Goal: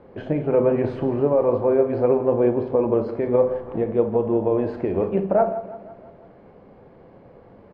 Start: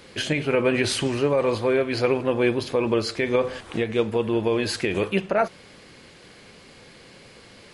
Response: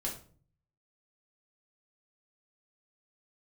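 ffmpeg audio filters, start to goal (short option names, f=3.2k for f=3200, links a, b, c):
-filter_complex "[0:a]lowpass=f=770:t=q:w=1.5,aecho=1:1:167|334|501|668|835:0.178|0.096|0.0519|0.028|0.0151,asplit=2[a][b];[1:a]atrim=start_sample=2205,adelay=33[c];[b][c]afir=irnorm=-1:irlink=0,volume=-11dB[d];[a][d]amix=inputs=2:normalize=0"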